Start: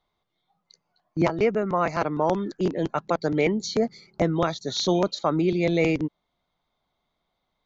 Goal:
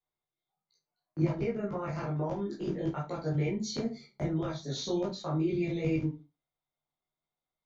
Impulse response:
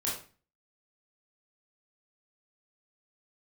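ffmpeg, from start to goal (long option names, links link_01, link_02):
-filter_complex "[0:a]agate=range=-13dB:threshold=-44dB:ratio=16:detection=peak,acrossover=split=230[link_01][link_02];[link_02]acompressor=threshold=-31dB:ratio=6[link_03];[link_01][link_03]amix=inputs=2:normalize=0[link_04];[1:a]atrim=start_sample=2205,asetrate=66150,aresample=44100[link_05];[link_04][link_05]afir=irnorm=-1:irlink=0,volume=-5dB"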